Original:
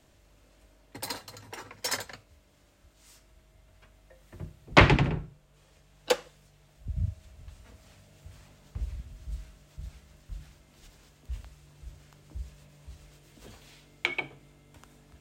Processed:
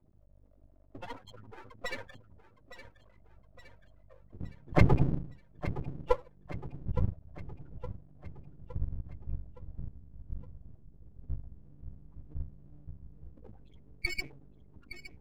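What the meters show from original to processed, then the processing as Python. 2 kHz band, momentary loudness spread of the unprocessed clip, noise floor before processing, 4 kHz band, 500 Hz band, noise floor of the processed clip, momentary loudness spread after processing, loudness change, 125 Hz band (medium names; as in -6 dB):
-10.5 dB, 25 LU, -62 dBFS, -13.0 dB, -4.5 dB, -61 dBFS, 21 LU, -7.5 dB, -1.0 dB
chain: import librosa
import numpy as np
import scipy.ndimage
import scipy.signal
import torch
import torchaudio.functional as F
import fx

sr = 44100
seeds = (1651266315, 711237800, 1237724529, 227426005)

y = fx.sample_hold(x, sr, seeds[0], rate_hz=7400.0, jitter_pct=0)
y = fx.spec_topn(y, sr, count=8)
y = np.maximum(y, 0.0)
y = fx.echo_feedback(y, sr, ms=865, feedback_pct=52, wet_db=-13)
y = y * librosa.db_to_amplitude(4.5)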